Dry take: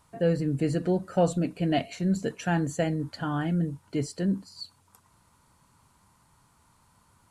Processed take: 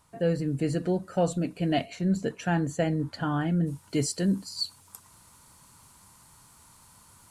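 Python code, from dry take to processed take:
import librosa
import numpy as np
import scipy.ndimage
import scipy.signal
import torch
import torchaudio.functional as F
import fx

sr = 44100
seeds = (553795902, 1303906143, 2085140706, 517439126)

y = fx.high_shelf(x, sr, hz=3800.0, db=fx.steps((0.0, 3.0), (1.84, -3.0), (3.66, 11.0)))
y = fx.rider(y, sr, range_db=10, speed_s=0.5)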